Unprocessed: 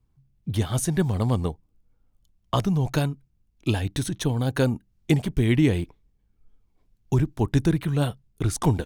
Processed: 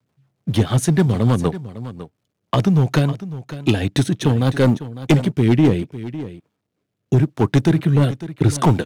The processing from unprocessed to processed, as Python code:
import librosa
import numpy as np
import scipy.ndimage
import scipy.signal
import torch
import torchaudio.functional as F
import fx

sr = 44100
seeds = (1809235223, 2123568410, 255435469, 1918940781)

p1 = fx.law_mismatch(x, sr, coded='A')
p2 = scipy.signal.sosfilt(scipy.signal.butter(4, 110.0, 'highpass', fs=sr, output='sos'), p1)
p3 = fx.high_shelf(p2, sr, hz=7000.0, db=-9.5)
p4 = fx.rider(p3, sr, range_db=10, speed_s=0.5)
p5 = p3 + (p4 * librosa.db_to_amplitude(0.0))
p6 = fx.rotary_switch(p5, sr, hz=6.7, then_hz=0.8, switch_at_s=4.2)
p7 = np.clip(p6, -10.0 ** (-13.0 / 20.0), 10.0 ** (-13.0 / 20.0))
p8 = p7 + fx.echo_single(p7, sr, ms=553, db=-14.5, dry=0)
y = p8 * librosa.db_to_amplitude(5.0)